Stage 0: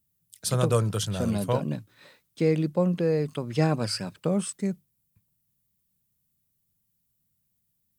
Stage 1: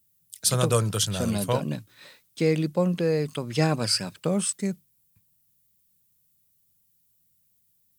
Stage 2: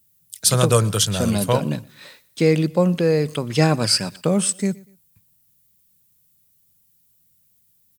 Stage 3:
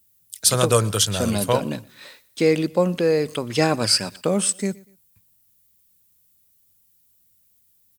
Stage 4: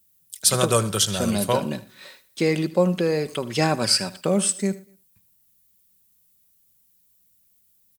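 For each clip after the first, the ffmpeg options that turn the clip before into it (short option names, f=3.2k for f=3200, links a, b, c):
-af "highshelf=f=2k:g=8"
-af "aecho=1:1:120|240:0.0668|0.0221,volume=6dB"
-af "equalizer=f=150:w=2.1:g=-8.5"
-af "aecho=1:1:5.3:0.33,aecho=1:1:77:0.133,volume=-1.5dB"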